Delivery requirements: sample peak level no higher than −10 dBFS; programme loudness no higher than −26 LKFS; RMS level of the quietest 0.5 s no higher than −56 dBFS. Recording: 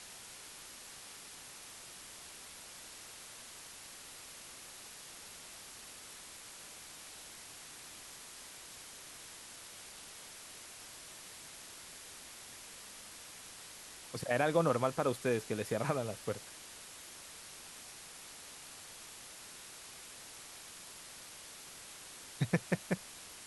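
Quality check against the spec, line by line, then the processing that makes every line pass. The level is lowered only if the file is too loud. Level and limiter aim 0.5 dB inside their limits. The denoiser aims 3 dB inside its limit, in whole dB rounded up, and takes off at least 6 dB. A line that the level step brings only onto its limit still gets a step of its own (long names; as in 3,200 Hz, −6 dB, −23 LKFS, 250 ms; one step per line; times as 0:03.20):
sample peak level −15.0 dBFS: in spec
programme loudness −42.0 LKFS: in spec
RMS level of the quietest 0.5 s −51 dBFS: out of spec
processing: broadband denoise 8 dB, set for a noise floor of −51 dBFS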